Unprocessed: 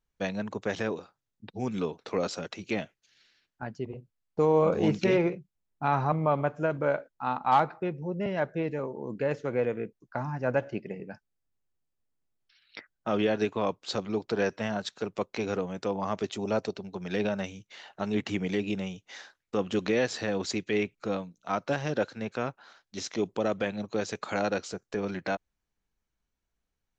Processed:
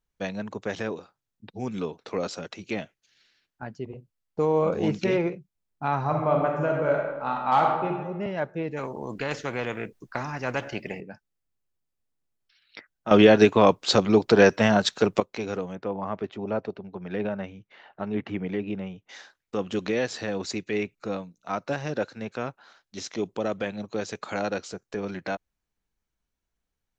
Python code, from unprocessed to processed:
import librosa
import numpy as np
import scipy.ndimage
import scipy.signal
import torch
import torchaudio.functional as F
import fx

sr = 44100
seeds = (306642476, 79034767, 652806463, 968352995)

y = fx.reverb_throw(x, sr, start_s=6.0, length_s=1.89, rt60_s=1.2, drr_db=0.0)
y = fx.spectral_comp(y, sr, ratio=2.0, at=(8.76, 10.99), fade=0.02)
y = fx.lowpass(y, sr, hz=2100.0, slope=12, at=(15.75, 19.09))
y = fx.notch(y, sr, hz=3200.0, q=12.0, at=(20.35, 22.17))
y = fx.edit(y, sr, fx.clip_gain(start_s=13.11, length_s=2.09, db=11.5), tone=tone)